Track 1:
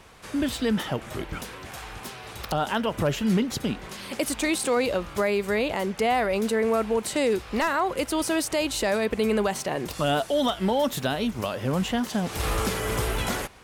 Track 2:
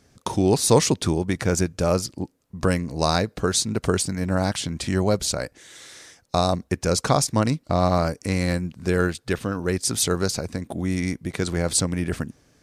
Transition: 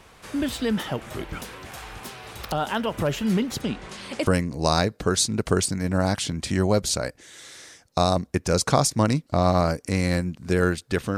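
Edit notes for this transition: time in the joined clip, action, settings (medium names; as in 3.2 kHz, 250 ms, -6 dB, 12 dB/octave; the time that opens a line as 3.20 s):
track 1
3.61–4.27 s: low-pass 9.5 kHz 24 dB/octave
4.27 s: go over to track 2 from 2.64 s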